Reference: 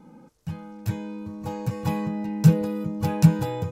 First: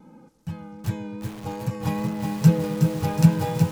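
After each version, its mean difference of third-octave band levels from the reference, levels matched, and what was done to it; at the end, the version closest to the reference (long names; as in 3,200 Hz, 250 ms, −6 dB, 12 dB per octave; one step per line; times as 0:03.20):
4.5 dB: pitch vibrato 2.5 Hz 31 cents
on a send: bucket-brigade delay 125 ms, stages 2,048, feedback 82%, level −18 dB
on the sum: feedback echo at a low word length 368 ms, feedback 55%, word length 6 bits, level −5 dB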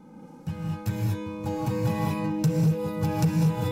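7.0 dB: reverb whose tail is shaped and stops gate 260 ms rising, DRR −3 dB
soft clipping −8 dBFS, distortion −15 dB
downward compressor 2.5 to 1, threshold −23 dBFS, peak gain reduction 8 dB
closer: first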